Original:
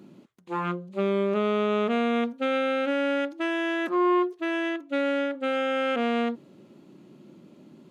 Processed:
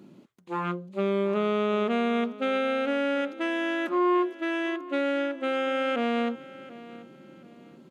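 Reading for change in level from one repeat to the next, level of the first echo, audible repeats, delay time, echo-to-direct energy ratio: −10.0 dB, −18.0 dB, 2, 735 ms, −17.5 dB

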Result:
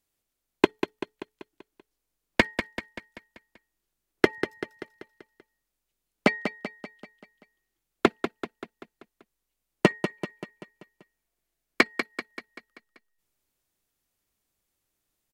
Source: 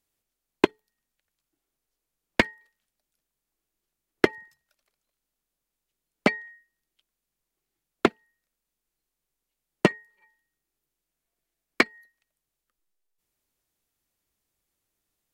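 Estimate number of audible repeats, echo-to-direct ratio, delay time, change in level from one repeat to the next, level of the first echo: 5, −7.5 dB, 193 ms, −5.5 dB, −9.0 dB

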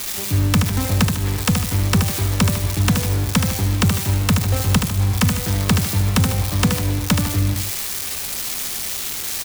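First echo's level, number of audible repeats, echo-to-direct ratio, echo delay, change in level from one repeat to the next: −5.5 dB, 2, −5.0 dB, 75 ms, −7.5 dB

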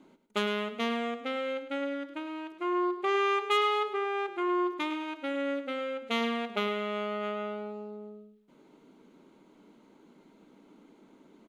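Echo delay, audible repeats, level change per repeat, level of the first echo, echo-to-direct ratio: 104 ms, 2, −9.5 dB, −11.5 dB, −11.0 dB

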